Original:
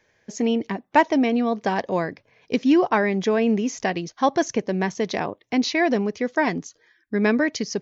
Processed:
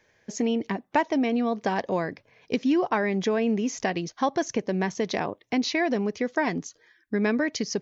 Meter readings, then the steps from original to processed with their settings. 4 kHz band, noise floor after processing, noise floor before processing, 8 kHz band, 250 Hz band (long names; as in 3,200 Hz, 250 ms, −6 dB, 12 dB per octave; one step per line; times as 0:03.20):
−2.5 dB, −66 dBFS, −66 dBFS, can't be measured, −4.0 dB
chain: downward compressor 2 to 1, threshold −24 dBFS, peak gain reduction 7.5 dB